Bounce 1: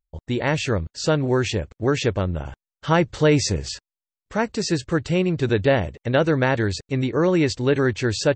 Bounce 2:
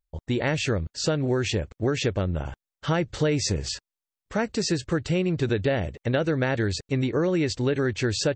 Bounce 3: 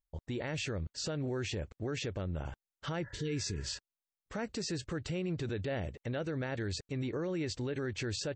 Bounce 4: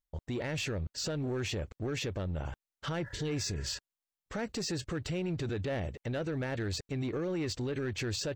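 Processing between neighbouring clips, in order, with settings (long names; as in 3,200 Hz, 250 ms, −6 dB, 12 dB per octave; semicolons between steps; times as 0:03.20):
dynamic equaliser 1,000 Hz, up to −6 dB, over −38 dBFS, Q 2.9; downward compressor, threshold −20 dBFS, peak gain reduction 7.5 dB
healed spectral selection 0:03.06–0:03.72, 470–2,000 Hz after; brickwall limiter −21 dBFS, peak gain reduction 8.5 dB; level −7 dB
leveller curve on the samples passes 1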